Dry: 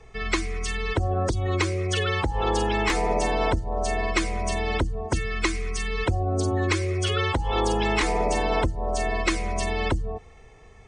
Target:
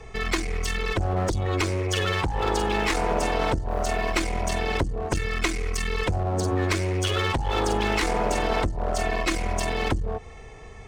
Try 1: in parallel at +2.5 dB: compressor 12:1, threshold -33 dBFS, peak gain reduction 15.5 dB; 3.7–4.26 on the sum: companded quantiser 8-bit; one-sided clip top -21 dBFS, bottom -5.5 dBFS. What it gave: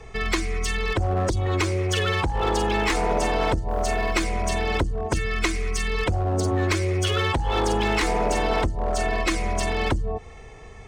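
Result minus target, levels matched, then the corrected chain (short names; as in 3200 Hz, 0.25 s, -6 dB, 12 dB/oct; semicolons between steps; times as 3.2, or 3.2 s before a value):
one-sided clip: distortion -4 dB
in parallel at +2.5 dB: compressor 12:1, threshold -33 dBFS, peak gain reduction 15.5 dB; 3.7–4.26 on the sum: companded quantiser 8-bit; one-sided clip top -28.5 dBFS, bottom -5.5 dBFS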